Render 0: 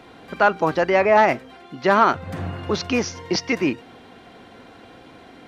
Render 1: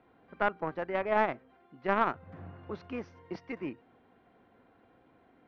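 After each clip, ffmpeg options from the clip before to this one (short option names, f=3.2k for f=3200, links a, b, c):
-af "aeval=exprs='0.668*(cos(1*acos(clip(val(0)/0.668,-1,1)))-cos(1*PI/2))+0.15*(cos(3*acos(clip(val(0)/0.668,-1,1)))-cos(3*PI/2))':c=same,lowpass=1.9k,volume=-8dB"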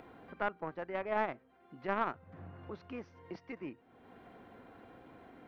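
-af "acompressor=mode=upward:threshold=-36dB:ratio=2.5,volume=-6dB"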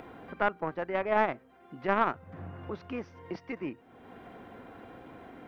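-af "bandreject=f=4.2k:w=23,volume=7dB"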